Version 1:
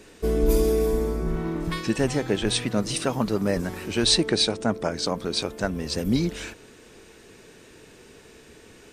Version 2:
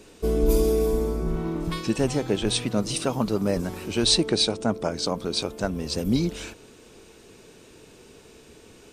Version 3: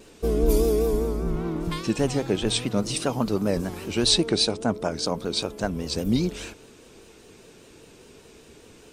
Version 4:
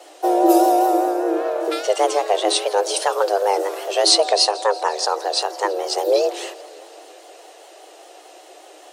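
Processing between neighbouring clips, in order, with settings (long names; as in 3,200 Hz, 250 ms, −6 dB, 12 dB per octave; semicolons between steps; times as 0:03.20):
parametric band 1,800 Hz −7 dB 0.52 octaves
pitch vibrato 5 Hz 79 cents
frequency shifter +300 Hz; feedback echo with a swinging delay time 168 ms, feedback 74%, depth 211 cents, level −22 dB; level +5.5 dB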